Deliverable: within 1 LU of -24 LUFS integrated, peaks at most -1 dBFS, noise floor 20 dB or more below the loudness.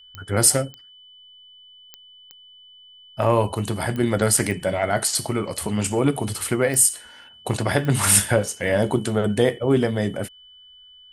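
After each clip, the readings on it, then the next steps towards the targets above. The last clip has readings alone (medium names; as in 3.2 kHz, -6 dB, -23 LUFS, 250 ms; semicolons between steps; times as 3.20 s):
clicks found 8; steady tone 3 kHz; tone level -46 dBFS; loudness -21.0 LUFS; peak level -2.0 dBFS; loudness target -24.0 LUFS
-> de-click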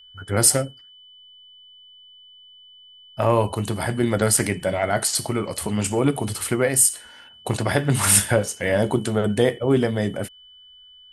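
clicks found 0; steady tone 3 kHz; tone level -46 dBFS
-> band-stop 3 kHz, Q 30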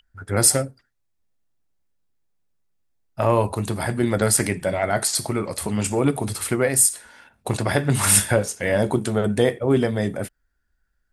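steady tone not found; loudness -21.0 LUFS; peak level -2.0 dBFS; loudness target -24.0 LUFS
-> trim -3 dB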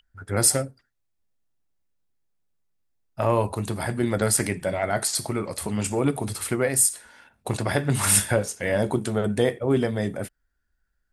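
loudness -24.0 LUFS; peak level -5.0 dBFS; noise floor -74 dBFS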